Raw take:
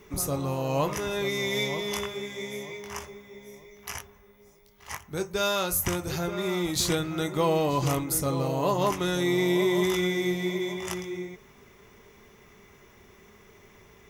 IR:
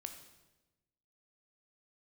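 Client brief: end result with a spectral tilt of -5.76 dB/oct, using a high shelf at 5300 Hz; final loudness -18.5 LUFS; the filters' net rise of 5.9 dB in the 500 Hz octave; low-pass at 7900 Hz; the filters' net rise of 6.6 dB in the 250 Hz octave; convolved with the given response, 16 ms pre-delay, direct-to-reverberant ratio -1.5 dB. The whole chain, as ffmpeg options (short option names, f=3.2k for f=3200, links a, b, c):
-filter_complex "[0:a]lowpass=7.9k,equalizer=f=250:t=o:g=8.5,equalizer=f=500:t=o:g=4.5,highshelf=f=5.3k:g=-4,asplit=2[a][b];[1:a]atrim=start_sample=2205,adelay=16[c];[b][c]afir=irnorm=-1:irlink=0,volume=5dB[d];[a][d]amix=inputs=2:normalize=0,volume=1dB"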